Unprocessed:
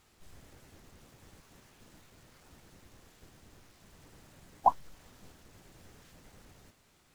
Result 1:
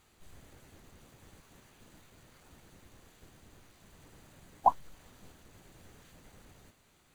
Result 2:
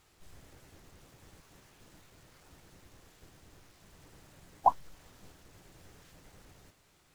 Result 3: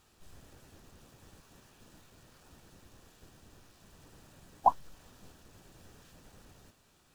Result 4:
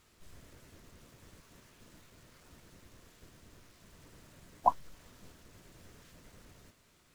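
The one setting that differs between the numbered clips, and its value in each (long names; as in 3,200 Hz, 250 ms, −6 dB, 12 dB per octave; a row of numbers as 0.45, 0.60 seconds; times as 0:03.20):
notch filter, centre frequency: 5,300, 230, 2,100, 800 Hertz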